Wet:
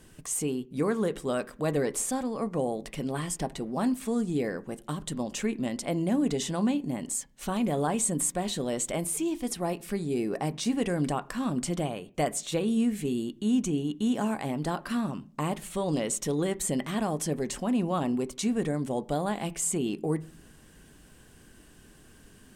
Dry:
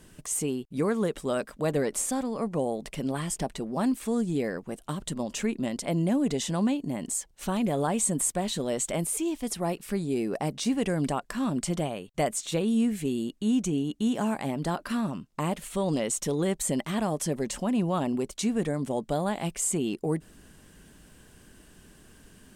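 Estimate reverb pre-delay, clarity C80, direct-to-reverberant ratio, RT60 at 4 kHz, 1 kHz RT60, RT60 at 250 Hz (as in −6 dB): 3 ms, 26.5 dB, 11.5 dB, 0.50 s, 0.40 s, 0.70 s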